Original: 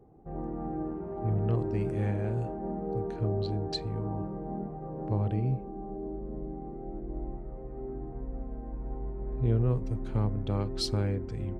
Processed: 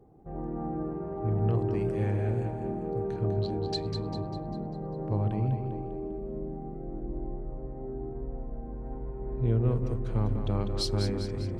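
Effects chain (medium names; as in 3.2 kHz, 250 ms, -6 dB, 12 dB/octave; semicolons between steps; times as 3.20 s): 7.05–8.85 s: treble shelf 3.2 kHz -11 dB; two-band feedback delay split 340 Hz, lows 153 ms, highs 199 ms, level -7 dB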